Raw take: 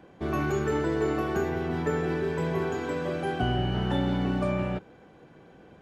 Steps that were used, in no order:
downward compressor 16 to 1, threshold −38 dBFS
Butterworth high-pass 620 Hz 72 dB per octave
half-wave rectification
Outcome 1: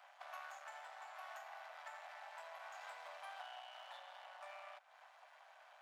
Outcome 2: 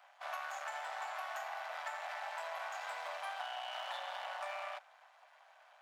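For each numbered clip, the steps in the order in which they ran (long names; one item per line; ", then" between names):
downward compressor, then half-wave rectification, then Butterworth high-pass
half-wave rectification, then Butterworth high-pass, then downward compressor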